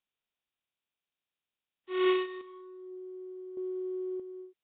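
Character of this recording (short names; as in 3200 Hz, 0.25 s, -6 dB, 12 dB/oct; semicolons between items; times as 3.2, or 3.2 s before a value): a buzz of ramps at a fixed pitch in blocks of 8 samples; chopped level 0.56 Hz, depth 60%, duty 35%; Nellymoser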